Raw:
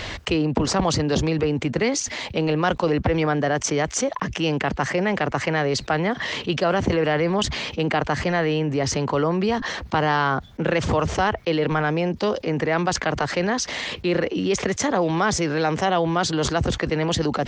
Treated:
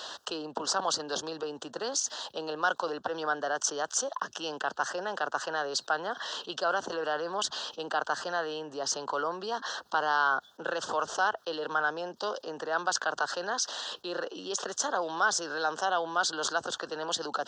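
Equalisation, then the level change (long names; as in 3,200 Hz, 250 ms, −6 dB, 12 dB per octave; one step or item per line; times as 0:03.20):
Bessel high-pass filter 860 Hz, order 2
dynamic equaliser 1,500 Hz, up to +7 dB, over −44 dBFS, Q 4.4
Butterworth band-reject 2,200 Hz, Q 1.3
−3.5 dB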